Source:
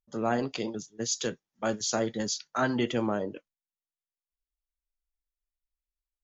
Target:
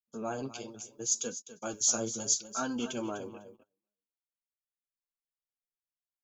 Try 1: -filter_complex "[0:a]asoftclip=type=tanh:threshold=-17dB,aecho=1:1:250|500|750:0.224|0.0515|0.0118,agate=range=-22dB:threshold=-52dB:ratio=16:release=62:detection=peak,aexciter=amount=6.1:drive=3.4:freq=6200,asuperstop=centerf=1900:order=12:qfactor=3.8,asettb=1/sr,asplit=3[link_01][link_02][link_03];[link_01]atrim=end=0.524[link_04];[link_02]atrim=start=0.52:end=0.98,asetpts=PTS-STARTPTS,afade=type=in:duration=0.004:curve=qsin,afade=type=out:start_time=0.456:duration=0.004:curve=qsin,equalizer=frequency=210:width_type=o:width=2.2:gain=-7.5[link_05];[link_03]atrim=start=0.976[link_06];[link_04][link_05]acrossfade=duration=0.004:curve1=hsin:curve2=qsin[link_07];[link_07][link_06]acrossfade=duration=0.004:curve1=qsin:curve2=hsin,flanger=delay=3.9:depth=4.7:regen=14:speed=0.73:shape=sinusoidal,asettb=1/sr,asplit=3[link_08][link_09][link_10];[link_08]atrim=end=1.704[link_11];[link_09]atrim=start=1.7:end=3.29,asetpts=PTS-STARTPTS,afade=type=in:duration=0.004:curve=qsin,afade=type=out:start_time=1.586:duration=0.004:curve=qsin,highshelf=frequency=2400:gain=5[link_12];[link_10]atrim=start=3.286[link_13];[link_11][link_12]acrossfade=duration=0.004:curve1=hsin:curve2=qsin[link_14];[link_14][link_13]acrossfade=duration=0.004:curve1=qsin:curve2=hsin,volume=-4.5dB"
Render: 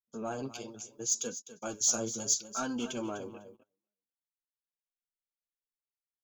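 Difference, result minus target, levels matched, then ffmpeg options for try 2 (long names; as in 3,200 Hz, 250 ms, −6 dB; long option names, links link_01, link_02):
soft clipping: distortion +21 dB
-filter_complex "[0:a]asoftclip=type=tanh:threshold=-5.5dB,aecho=1:1:250|500|750:0.224|0.0515|0.0118,agate=range=-22dB:threshold=-52dB:ratio=16:release=62:detection=peak,aexciter=amount=6.1:drive=3.4:freq=6200,asuperstop=centerf=1900:order=12:qfactor=3.8,asettb=1/sr,asplit=3[link_01][link_02][link_03];[link_01]atrim=end=0.524[link_04];[link_02]atrim=start=0.52:end=0.98,asetpts=PTS-STARTPTS,afade=type=in:duration=0.004:curve=qsin,afade=type=out:start_time=0.456:duration=0.004:curve=qsin,equalizer=frequency=210:width_type=o:width=2.2:gain=-7.5[link_05];[link_03]atrim=start=0.976[link_06];[link_04][link_05]acrossfade=duration=0.004:curve1=hsin:curve2=qsin[link_07];[link_07][link_06]acrossfade=duration=0.004:curve1=qsin:curve2=hsin,flanger=delay=3.9:depth=4.7:regen=14:speed=0.73:shape=sinusoidal,asettb=1/sr,asplit=3[link_08][link_09][link_10];[link_08]atrim=end=1.704[link_11];[link_09]atrim=start=1.7:end=3.29,asetpts=PTS-STARTPTS,afade=type=in:duration=0.004:curve=qsin,afade=type=out:start_time=1.586:duration=0.004:curve=qsin,highshelf=frequency=2400:gain=5[link_12];[link_10]atrim=start=3.286[link_13];[link_11][link_12]acrossfade=duration=0.004:curve1=hsin:curve2=qsin[link_14];[link_14][link_13]acrossfade=duration=0.004:curve1=qsin:curve2=hsin,volume=-4.5dB"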